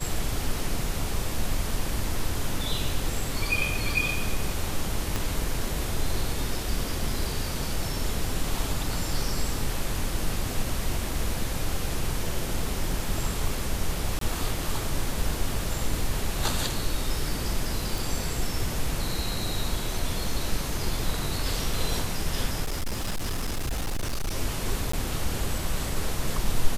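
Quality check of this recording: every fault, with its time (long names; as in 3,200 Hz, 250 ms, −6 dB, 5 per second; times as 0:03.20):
0:05.16: click
0:14.19–0:14.21: drop-out 23 ms
0:17.98: click
0:22.62–0:24.36: clipping −24.5 dBFS
0:24.92–0:24.93: drop-out 14 ms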